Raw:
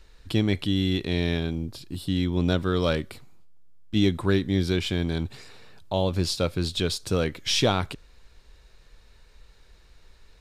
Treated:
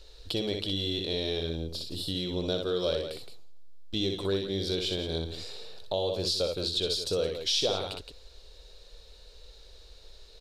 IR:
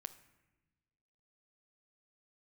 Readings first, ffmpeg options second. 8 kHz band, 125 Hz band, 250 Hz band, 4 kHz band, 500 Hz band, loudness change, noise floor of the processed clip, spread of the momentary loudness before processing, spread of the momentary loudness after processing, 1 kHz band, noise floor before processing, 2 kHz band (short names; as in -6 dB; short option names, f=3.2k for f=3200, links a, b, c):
-3.5 dB, -11.0 dB, -10.0 dB, +0.5 dB, -2.0 dB, -4.5 dB, -52 dBFS, 8 LU, 10 LU, -8.5 dB, -55 dBFS, -10.0 dB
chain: -af "equalizer=f=125:t=o:w=1:g=-8,equalizer=f=250:t=o:w=1:g=-7,equalizer=f=500:t=o:w=1:g=10,equalizer=f=1k:t=o:w=1:g=-4,equalizer=f=2k:t=o:w=1:g=-8,equalizer=f=4k:t=o:w=1:g=11,aecho=1:1:61.22|169.1:0.562|0.251,acompressor=threshold=-33dB:ratio=2"